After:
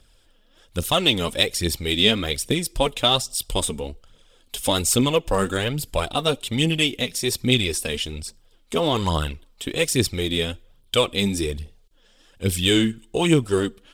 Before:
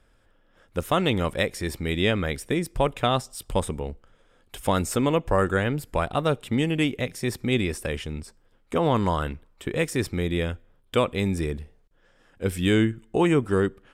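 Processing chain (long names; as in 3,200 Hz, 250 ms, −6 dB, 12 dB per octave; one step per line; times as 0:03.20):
phase shifter 1.2 Hz, delay 4.9 ms, feedback 50%
high shelf with overshoot 2,500 Hz +9.5 dB, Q 1.5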